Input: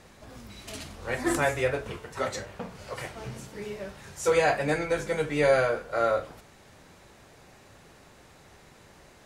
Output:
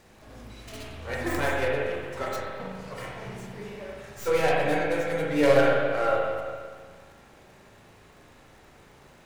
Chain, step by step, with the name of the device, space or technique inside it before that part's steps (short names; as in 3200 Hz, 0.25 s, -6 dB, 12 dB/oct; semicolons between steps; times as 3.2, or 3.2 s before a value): 5.27–5.86 comb 7.1 ms, depth 72%; record under a worn stylus (tracing distortion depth 0.29 ms; crackle 64/s -45 dBFS; pink noise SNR 37 dB); spring tank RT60 1.7 s, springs 37/58 ms, chirp 75 ms, DRR -2.5 dB; gain -4 dB